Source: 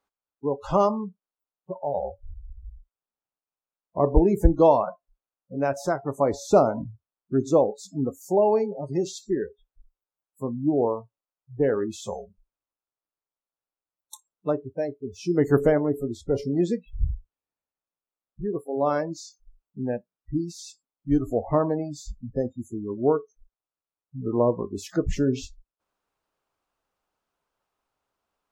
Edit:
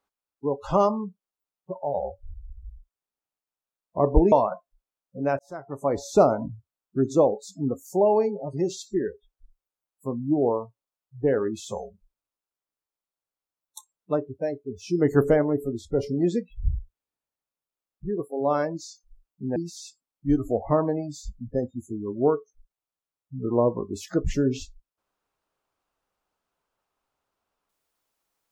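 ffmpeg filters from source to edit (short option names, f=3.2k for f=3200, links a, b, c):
-filter_complex "[0:a]asplit=4[a][b][c][d];[a]atrim=end=4.322[e];[b]atrim=start=4.678:end=5.75,asetpts=PTS-STARTPTS,afade=t=out:st=1.068:d=0.004:c=hsin[f];[c]atrim=start=5.75:end=19.922,asetpts=PTS-STARTPTS,afade=t=in:d=0.65[g];[d]atrim=start=20.378[h];[f][g]concat=n=2:v=0:a=1[i];[e][i]acrossfade=d=0.004:c1=hsin:c2=hsin[j];[j][h]acrossfade=d=0.004:c1=hsin:c2=hsin"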